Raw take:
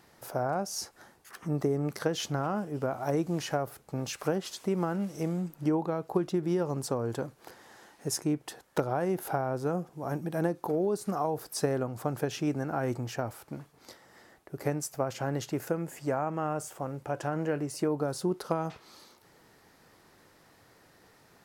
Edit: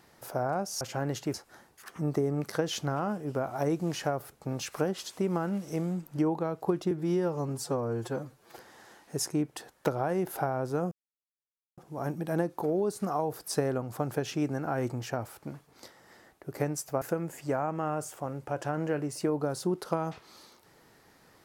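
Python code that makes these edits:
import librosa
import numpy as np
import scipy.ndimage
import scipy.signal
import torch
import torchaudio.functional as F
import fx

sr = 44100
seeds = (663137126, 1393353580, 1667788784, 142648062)

y = fx.edit(x, sr, fx.stretch_span(start_s=6.38, length_s=1.11, factor=1.5),
    fx.insert_silence(at_s=9.83, length_s=0.86),
    fx.move(start_s=15.07, length_s=0.53, to_s=0.81), tone=tone)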